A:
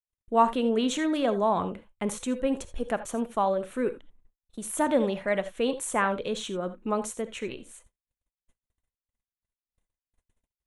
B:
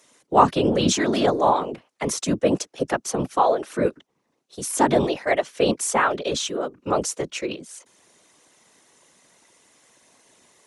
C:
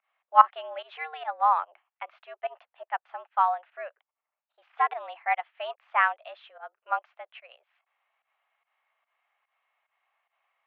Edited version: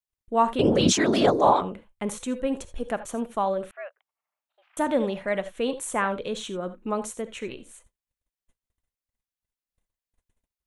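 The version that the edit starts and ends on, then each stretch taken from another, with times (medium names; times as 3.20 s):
A
0.59–1.61 s: from B
3.71–4.77 s: from C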